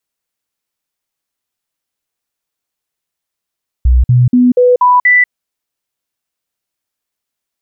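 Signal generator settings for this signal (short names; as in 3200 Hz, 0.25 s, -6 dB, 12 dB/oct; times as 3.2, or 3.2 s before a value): stepped sine 61.9 Hz up, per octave 1, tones 6, 0.19 s, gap 0.05 s -4.5 dBFS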